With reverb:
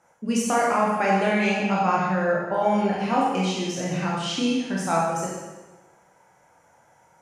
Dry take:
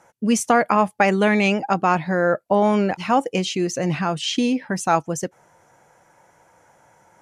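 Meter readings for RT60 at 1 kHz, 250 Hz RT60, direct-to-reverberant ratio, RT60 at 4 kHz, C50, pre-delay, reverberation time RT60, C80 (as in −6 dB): 1.2 s, 1.1 s, −5.0 dB, 1.1 s, 0.0 dB, 19 ms, 1.2 s, 2.5 dB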